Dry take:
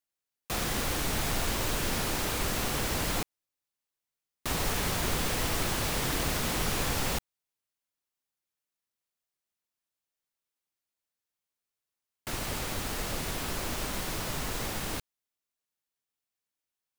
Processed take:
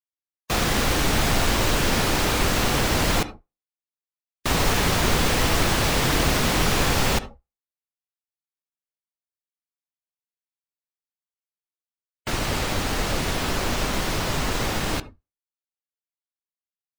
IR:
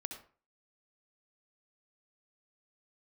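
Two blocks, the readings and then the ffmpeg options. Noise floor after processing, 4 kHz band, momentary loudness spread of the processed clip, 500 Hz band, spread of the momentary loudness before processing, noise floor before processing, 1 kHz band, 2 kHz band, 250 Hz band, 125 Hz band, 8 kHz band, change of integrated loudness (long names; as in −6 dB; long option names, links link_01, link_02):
below −85 dBFS, +9.0 dB, 6 LU, +10.0 dB, 6 LU, below −85 dBFS, +10.0 dB, +9.5 dB, +10.0 dB, +10.0 dB, +6.0 dB, +8.5 dB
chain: -filter_complex "[0:a]asplit=2[link_01][link_02];[1:a]atrim=start_sample=2205,lowpass=8000[link_03];[link_02][link_03]afir=irnorm=-1:irlink=0,volume=-2.5dB[link_04];[link_01][link_04]amix=inputs=2:normalize=0,afftdn=noise_reduction=26:noise_floor=-47,volume=6dB"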